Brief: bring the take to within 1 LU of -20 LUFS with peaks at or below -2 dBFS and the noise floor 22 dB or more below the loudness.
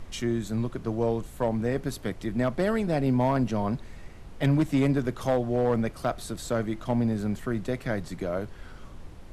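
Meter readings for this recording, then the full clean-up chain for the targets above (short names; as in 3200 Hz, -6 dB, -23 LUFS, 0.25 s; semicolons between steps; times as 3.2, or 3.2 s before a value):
clipped 0.6%; flat tops at -16.5 dBFS; noise floor -45 dBFS; noise floor target -50 dBFS; loudness -28.0 LUFS; peak -16.5 dBFS; loudness target -20.0 LUFS
-> clip repair -16.5 dBFS; noise print and reduce 6 dB; gain +8 dB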